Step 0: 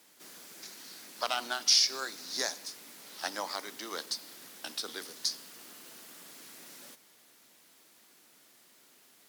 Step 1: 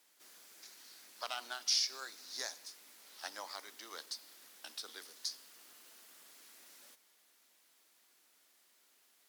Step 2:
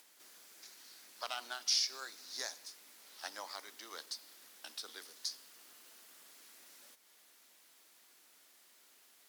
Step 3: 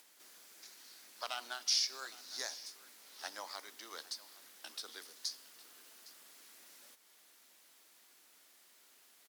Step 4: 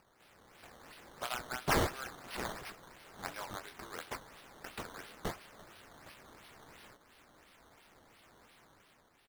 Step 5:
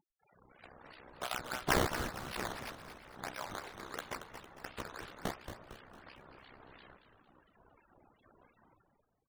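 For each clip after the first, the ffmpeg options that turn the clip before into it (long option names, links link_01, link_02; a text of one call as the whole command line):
ffmpeg -i in.wav -af "highpass=frequency=600:poles=1,volume=-8dB" out.wav
ffmpeg -i in.wav -af "acompressor=mode=upward:threshold=-57dB:ratio=2.5" out.wav
ffmpeg -i in.wav -af "aecho=1:1:811:0.112" out.wav
ffmpeg -i in.wav -filter_complex "[0:a]asplit=2[link_01][link_02];[link_02]adelay=24,volume=-6dB[link_03];[link_01][link_03]amix=inputs=2:normalize=0,dynaudnorm=framelen=110:gausssize=11:maxgain=7dB,acrusher=samples=12:mix=1:aa=0.000001:lfo=1:lforange=12:lforate=2.9,volume=-5.5dB" out.wav
ffmpeg -i in.wav -filter_complex "[0:a]tremolo=f=64:d=0.857,afftfilt=real='re*gte(hypot(re,im),0.00126)':imag='im*gte(hypot(re,im),0.00126)':win_size=1024:overlap=0.75,asplit=6[link_01][link_02][link_03][link_04][link_05][link_06];[link_02]adelay=227,afreqshift=-120,volume=-9dB[link_07];[link_03]adelay=454,afreqshift=-240,volume=-15.9dB[link_08];[link_04]adelay=681,afreqshift=-360,volume=-22.9dB[link_09];[link_05]adelay=908,afreqshift=-480,volume=-29.8dB[link_10];[link_06]adelay=1135,afreqshift=-600,volume=-36.7dB[link_11];[link_01][link_07][link_08][link_09][link_10][link_11]amix=inputs=6:normalize=0,volume=4dB" out.wav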